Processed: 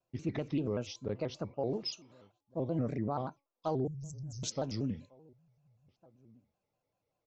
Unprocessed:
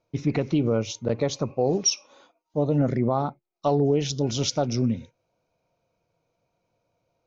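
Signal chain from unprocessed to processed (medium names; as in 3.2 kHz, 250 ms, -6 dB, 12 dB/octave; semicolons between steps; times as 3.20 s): 0.96–2.77 s: distance through air 100 m; 3.87–4.43 s: inverse Chebyshev band-stop 300–3800 Hz, stop band 40 dB; feedback comb 310 Hz, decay 0.32 s, harmonics all, mix 40%; echo from a far wall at 250 m, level -26 dB; vibrato with a chosen wave square 5.2 Hz, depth 160 cents; trim -7 dB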